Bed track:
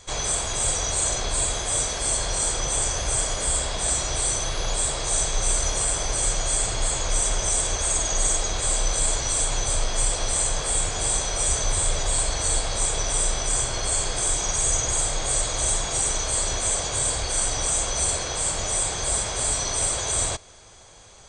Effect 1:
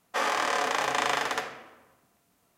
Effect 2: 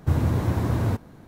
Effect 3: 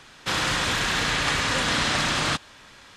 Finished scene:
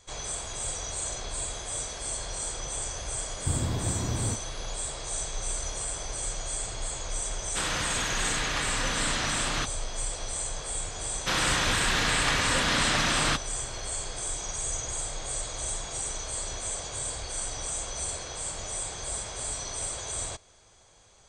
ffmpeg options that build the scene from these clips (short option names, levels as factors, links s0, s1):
-filter_complex "[3:a]asplit=2[s0][s1];[0:a]volume=0.335[s2];[2:a]atrim=end=1.27,asetpts=PTS-STARTPTS,volume=0.422,afade=t=in:d=0.004:c=hsin,afade=t=out:st=1.266:d=0.004:c=hsin,adelay=3390[s3];[s0]atrim=end=2.96,asetpts=PTS-STARTPTS,volume=0.473,afade=t=in:d=0.004:c=hsin,afade=t=out:st=2.956:d=0.004:c=hsin,adelay=7290[s4];[s1]atrim=end=2.96,asetpts=PTS-STARTPTS,volume=0.794,afade=t=in:d=0.004:c=hsin,afade=t=out:st=2.956:d=0.004:c=hsin,adelay=11000[s5];[s2][s3][s4][s5]amix=inputs=4:normalize=0"